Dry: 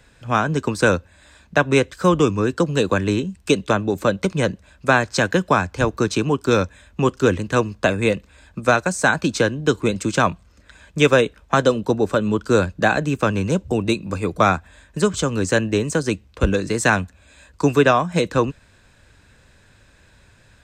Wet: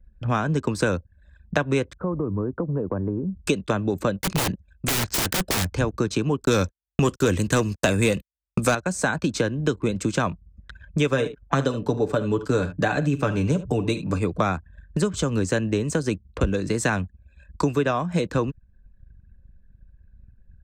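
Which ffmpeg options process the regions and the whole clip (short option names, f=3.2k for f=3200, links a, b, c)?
-filter_complex "[0:a]asettb=1/sr,asplit=3[a][b][c];[a]atrim=end=1.934[d];[b]atrim=start=1.93:end=3.41,asetpts=PTS-STARTPTS,afade=t=in:d=0.004:c=qsin,afade=t=out:st=1.476:d=0.004:c=qsin,lowpass=f=1.1k:w=0.5412,lowpass=f=1.1k:w=1.3066,acompressor=threshold=-34dB:ratio=2:attack=3.2:release=140:knee=1:detection=peak[e];[c]atrim=start=3.406[f];[d][e]acrossfade=d=0.004:c1=hsin:c2=qsin[g];[g][f]acrossfade=d=0.004:c1=qsin:c2=hsin,asettb=1/sr,asplit=3[h][i][j];[h]atrim=end=4.214[k];[i]atrim=start=4.21:end=5.65,asetpts=PTS-STARTPTS,afade=t=in:d=0.004:c=qsin,afade=t=out:st=1.436:d=0.004:c=qsin,agate=range=-33dB:threshold=-46dB:ratio=3:release=100:detection=peak,highshelf=f=2.1k:g=8.5,aeval=exprs='(mod(6.68*val(0)+1,2)-1)/6.68':c=same[l];[j]atrim=start=5.646[m];[k][l]acrossfade=d=0.004:c1=hsin:c2=qsin[n];[n][m]acrossfade=d=0.004:c1=qsin:c2=hsin,asettb=1/sr,asplit=3[o][p][q];[o]atrim=end=6.454[r];[p]atrim=start=6.45:end=8.75,asetpts=PTS-STARTPTS,afade=t=in:d=0.004:c=qsin,afade=t=out:st=2.296:d=0.004:c=qsin,agate=range=-48dB:threshold=-37dB:ratio=16:release=100:detection=peak,aemphasis=mode=production:type=75kf,acontrast=88[s];[q]atrim=start=8.746[t];[r][s]acrossfade=d=0.004:c1=hsin:c2=qsin[u];[u][t]acrossfade=d=0.004:c1=qsin:c2=hsin,asettb=1/sr,asplit=3[v][w][x];[v]atrim=end=11.094[y];[w]atrim=start=11.09:end=14.19,asetpts=PTS-STARTPTS,afade=t=in:d=0.004:c=qsin,afade=t=out:st=3.096:d=0.004:c=qsin,aecho=1:1:6.9:0.52,atrim=end_sample=136710,aecho=1:1:43|73:0.126|0.168,atrim=end_sample=136710[z];[x]atrim=start=14.186[aa];[y][z]acrossfade=d=0.004:c1=hsin:c2=qsin[ab];[ab][aa]acrossfade=d=0.004:c1=qsin:c2=hsin,anlmdn=0.251,lowshelf=f=390:g=5.5,acompressor=threshold=-28dB:ratio=3,volume=4.5dB"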